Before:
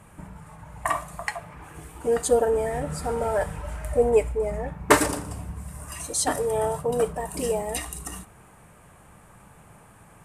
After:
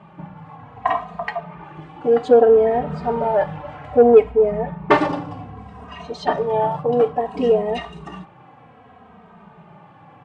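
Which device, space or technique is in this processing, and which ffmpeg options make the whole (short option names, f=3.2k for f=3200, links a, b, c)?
barber-pole flanger into a guitar amplifier: -filter_complex "[0:a]asettb=1/sr,asplit=3[a][b][c];[a]atrim=end=5.874[d];[b]atrim=start=5.87:end=6.62,asetpts=PTS-STARTPTS,afade=t=in:d=0.004:c=qsin,afade=t=out:st=0.746:d=0.004:c=qsin,lowpass=6.6k[e];[c]atrim=start=6.616[f];[d][e]acrossfade=d=0.004:c1=hsin:c2=qsin[g];[g][f]acrossfade=d=0.004:c1=qsin:c2=hsin,asplit=2[h][i];[i]adelay=2.9,afreqshift=-0.62[j];[h][j]amix=inputs=2:normalize=1,asoftclip=type=tanh:threshold=-13dB,highpass=100,equalizer=f=170:t=q:w=4:g=6,equalizer=f=240:t=q:w=4:g=9,equalizer=f=440:t=q:w=4:g=7,equalizer=f=760:t=q:w=4:g=10,equalizer=f=1.1k:t=q:w=4:g=5,equalizer=f=3.1k:t=q:w=4:g=3,lowpass=f=3.9k:w=0.5412,lowpass=f=3.9k:w=1.3066,volume=4dB"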